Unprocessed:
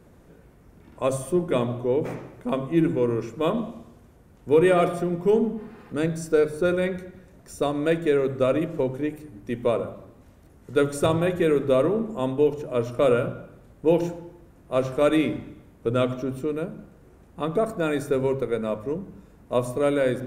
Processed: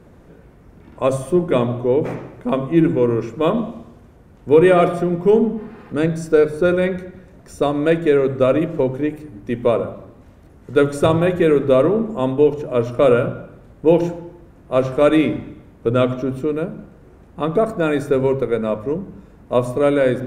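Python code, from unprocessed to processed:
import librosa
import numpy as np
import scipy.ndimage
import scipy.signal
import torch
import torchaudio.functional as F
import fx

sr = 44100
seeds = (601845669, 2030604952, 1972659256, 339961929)

y = fx.high_shelf(x, sr, hz=5500.0, db=-9.0)
y = y * 10.0 ** (6.5 / 20.0)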